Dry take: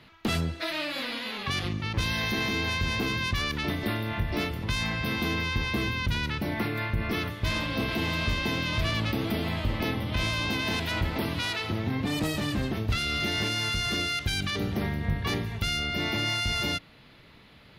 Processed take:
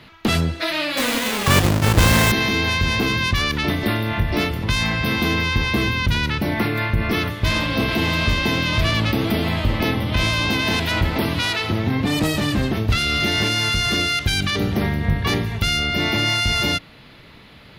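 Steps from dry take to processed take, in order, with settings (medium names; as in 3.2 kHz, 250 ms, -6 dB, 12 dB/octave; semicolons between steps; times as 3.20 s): 0.97–2.32 s: square wave that keeps the level; trim +8.5 dB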